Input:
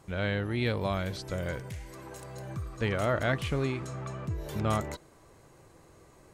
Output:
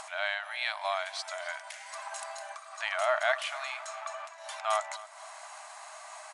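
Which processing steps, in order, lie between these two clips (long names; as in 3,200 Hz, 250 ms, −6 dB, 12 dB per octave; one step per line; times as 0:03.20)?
upward compression, threshold −31 dBFS
linear-phase brick-wall band-pass 600–11,000 Hz
repeating echo 261 ms, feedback 48%, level −18 dB
level +3.5 dB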